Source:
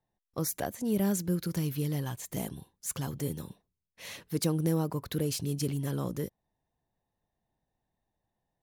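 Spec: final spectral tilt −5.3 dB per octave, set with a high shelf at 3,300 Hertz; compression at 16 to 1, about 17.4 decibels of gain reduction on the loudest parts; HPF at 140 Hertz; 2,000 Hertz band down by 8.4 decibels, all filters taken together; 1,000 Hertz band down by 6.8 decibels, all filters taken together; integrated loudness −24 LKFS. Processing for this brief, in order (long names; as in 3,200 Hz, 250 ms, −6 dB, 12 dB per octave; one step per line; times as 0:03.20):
high-pass filter 140 Hz
parametric band 1,000 Hz −8 dB
parametric band 2,000 Hz −6 dB
high-shelf EQ 3,300 Hz −6.5 dB
downward compressor 16 to 1, threshold −43 dBFS
level +25 dB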